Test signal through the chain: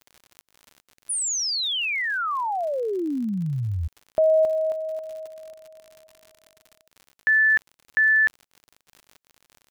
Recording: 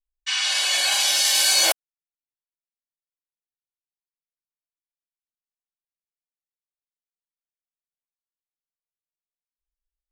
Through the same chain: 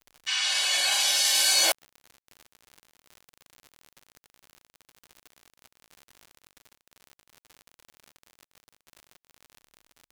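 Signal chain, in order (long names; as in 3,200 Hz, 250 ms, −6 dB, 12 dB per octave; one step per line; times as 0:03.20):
surface crackle 73 per second −32 dBFS
level −3.5 dB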